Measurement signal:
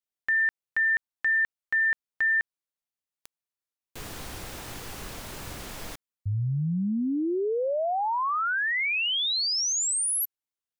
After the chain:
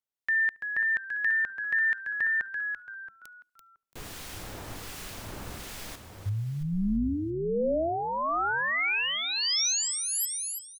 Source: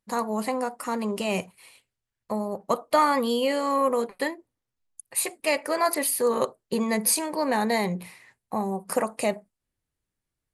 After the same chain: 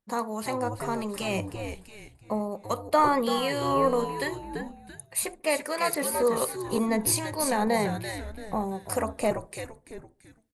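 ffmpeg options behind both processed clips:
ffmpeg -i in.wav -filter_complex "[0:a]asplit=2[link_01][link_02];[link_02]asplit=4[link_03][link_04][link_05][link_06];[link_03]adelay=337,afreqshift=-110,volume=-7dB[link_07];[link_04]adelay=674,afreqshift=-220,volume=-15.9dB[link_08];[link_05]adelay=1011,afreqshift=-330,volume=-24.7dB[link_09];[link_06]adelay=1348,afreqshift=-440,volume=-33.6dB[link_10];[link_07][link_08][link_09][link_10]amix=inputs=4:normalize=0[link_11];[link_01][link_11]amix=inputs=2:normalize=0,acrossover=split=1500[link_12][link_13];[link_12]aeval=exprs='val(0)*(1-0.5/2+0.5/2*cos(2*PI*1.3*n/s))':channel_layout=same[link_14];[link_13]aeval=exprs='val(0)*(1-0.5/2-0.5/2*cos(2*PI*1.3*n/s))':channel_layout=same[link_15];[link_14][link_15]amix=inputs=2:normalize=0,asplit=2[link_16][link_17];[link_17]adelay=72,lowpass=frequency=1100:poles=1,volume=-22dB,asplit=2[link_18][link_19];[link_19]adelay=72,lowpass=frequency=1100:poles=1,volume=0.48,asplit=2[link_20][link_21];[link_21]adelay=72,lowpass=frequency=1100:poles=1,volume=0.48[link_22];[link_18][link_20][link_22]amix=inputs=3:normalize=0[link_23];[link_16][link_23]amix=inputs=2:normalize=0" out.wav

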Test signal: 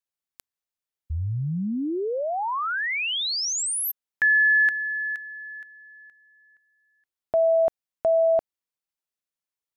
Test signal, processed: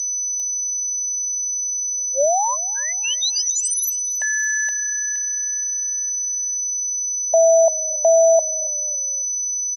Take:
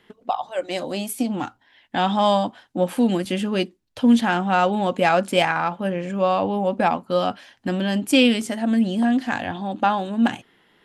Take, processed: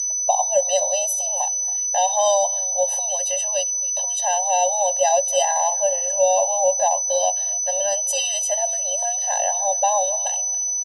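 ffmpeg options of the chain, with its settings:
ffmpeg -i in.wav -filter_complex "[0:a]aeval=exprs='val(0)+0.0501*sin(2*PI*6000*n/s)':channel_layout=same,tiltshelf=frequency=1100:gain=9.5,acrossover=split=140|3500[link_01][link_02][link_03];[link_02]acompressor=threshold=-16dB:ratio=6:attack=3.1:release=297:knee=2.83:detection=peak[link_04];[link_01][link_04][link_03]amix=inputs=3:normalize=0,firequalizer=gain_entry='entry(550,0);entry(1700,-8);entry(3300,8)':delay=0.05:min_phase=1,asplit=4[link_05][link_06][link_07][link_08];[link_06]adelay=277,afreqshift=-31,volume=-20dB[link_09];[link_07]adelay=554,afreqshift=-62,volume=-27.7dB[link_10];[link_08]adelay=831,afreqshift=-93,volume=-35.5dB[link_11];[link_05][link_09][link_10][link_11]amix=inputs=4:normalize=0,afftfilt=real='re*eq(mod(floor(b*sr/1024/520),2),1)':imag='im*eq(mod(floor(b*sr/1024/520),2),1)':win_size=1024:overlap=0.75,volume=6dB" out.wav

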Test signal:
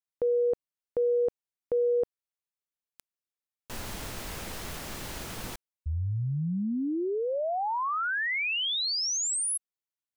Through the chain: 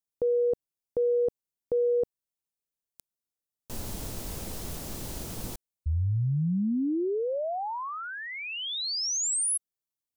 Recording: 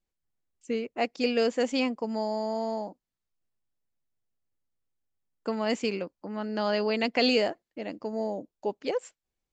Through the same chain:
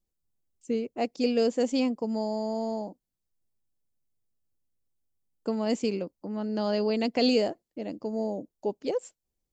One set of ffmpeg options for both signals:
ffmpeg -i in.wav -af "equalizer=frequency=1800:width=0.53:gain=-12,volume=3.5dB" out.wav

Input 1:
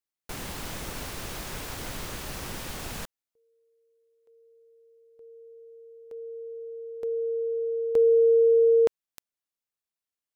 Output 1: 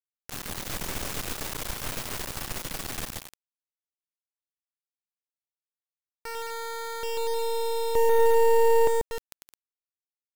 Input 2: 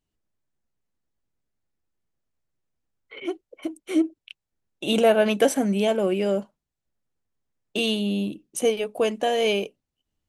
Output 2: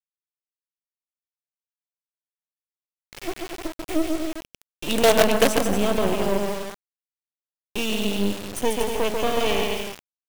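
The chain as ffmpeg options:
ffmpeg -i in.wav -af "aecho=1:1:140|238|306.6|354.6|388.2:0.631|0.398|0.251|0.158|0.1,acrusher=bits=3:dc=4:mix=0:aa=0.000001,acontrast=64,volume=-4dB" out.wav

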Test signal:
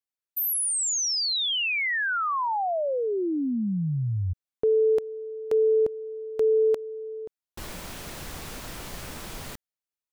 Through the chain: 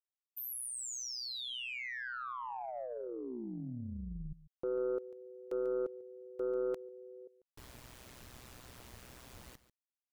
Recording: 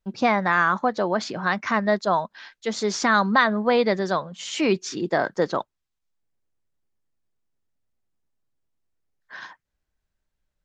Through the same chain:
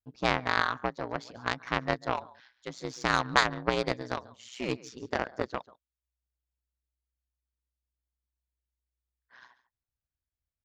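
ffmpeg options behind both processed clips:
ffmpeg -i in.wav -af "aecho=1:1:143:0.168,aeval=exprs='val(0)*sin(2*PI*62*n/s)':channel_layout=same,aeval=exprs='0.501*(cos(1*acos(clip(val(0)/0.501,-1,1)))-cos(1*PI/2))+0.141*(cos(3*acos(clip(val(0)/0.501,-1,1)))-cos(3*PI/2))+0.00316*(cos(4*acos(clip(val(0)/0.501,-1,1)))-cos(4*PI/2))+0.00794*(cos(6*acos(clip(val(0)/0.501,-1,1)))-cos(6*PI/2))+0.00316*(cos(8*acos(clip(val(0)/0.501,-1,1)))-cos(8*PI/2))':channel_layout=same,volume=3dB" out.wav

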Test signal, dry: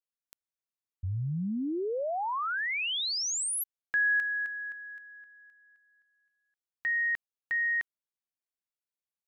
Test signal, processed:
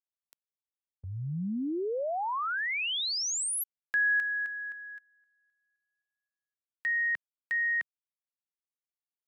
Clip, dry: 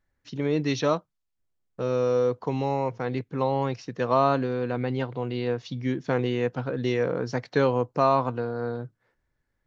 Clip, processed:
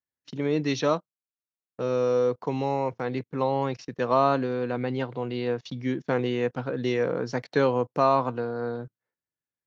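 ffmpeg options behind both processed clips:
ffmpeg -i in.wav -af "highpass=130,agate=range=-18dB:threshold=-48dB:ratio=16:release=21:detection=rms" out.wav

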